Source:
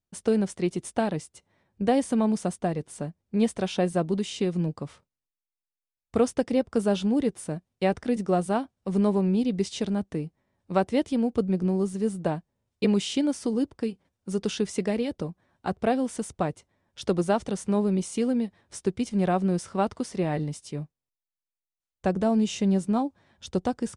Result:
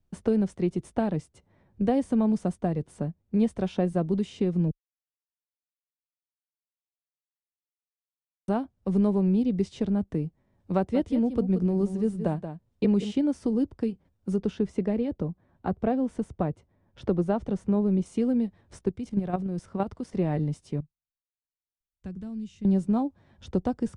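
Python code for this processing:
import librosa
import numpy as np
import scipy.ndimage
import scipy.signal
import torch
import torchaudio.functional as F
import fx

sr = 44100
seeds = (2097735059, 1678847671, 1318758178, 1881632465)

y = fx.echo_single(x, sr, ms=179, db=-11.0, at=(10.94, 13.1), fade=0.02)
y = fx.high_shelf(y, sr, hz=3200.0, db=-10.5, at=(14.36, 18.06))
y = fx.level_steps(y, sr, step_db=11, at=(18.78, 20.13))
y = fx.tone_stack(y, sr, knobs='6-0-2', at=(20.8, 22.65))
y = fx.edit(y, sr, fx.silence(start_s=4.71, length_s=3.77), tone=tone)
y = fx.tilt_eq(y, sr, slope=-2.5)
y = fx.band_squash(y, sr, depth_pct=40)
y = y * librosa.db_to_amplitude(-4.5)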